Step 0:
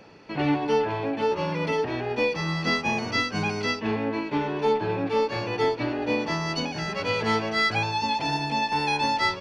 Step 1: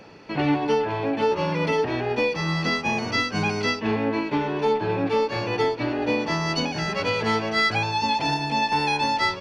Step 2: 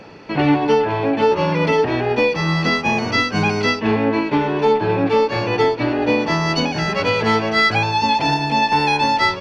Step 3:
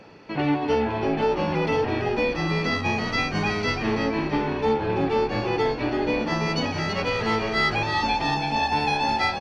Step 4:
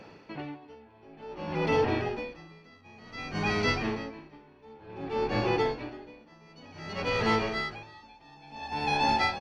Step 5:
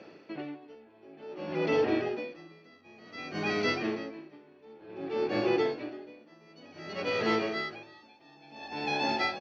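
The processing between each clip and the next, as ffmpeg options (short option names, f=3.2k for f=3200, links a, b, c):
-af "alimiter=limit=-16.5dB:level=0:latency=1:release=391,volume=3.5dB"
-af "highshelf=f=6.3k:g=-6.5,volume=6.5dB"
-filter_complex "[0:a]asplit=7[a][b][c][d][e][f][g];[b]adelay=332,afreqshift=-68,volume=-6.5dB[h];[c]adelay=664,afreqshift=-136,volume=-12.9dB[i];[d]adelay=996,afreqshift=-204,volume=-19.3dB[j];[e]adelay=1328,afreqshift=-272,volume=-25.6dB[k];[f]adelay=1660,afreqshift=-340,volume=-32dB[l];[g]adelay=1992,afreqshift=-408,volume=-38.4dB[m];[a][h][i][j][k][l][m]amix=inputs=7:normalize=0,volume=-7.5dB"
-af "aeval=exprs='val(0)*pow(10,-29*(0.5-0.5*cos(2*PI*0.55*n/s))/20)':c=same,volume=-1.5dB"
-af "highpass=180,equalizer=f=340:t=q:w=4:g=7,equalizer=f=610:t=q:w=4:g=4,equalizer=f=920:t=q:w=4:g=-7,lowpass=f=6.4k:w=0.5412,lowpass=f=6.4k:w=1.3066,volume=-2dB"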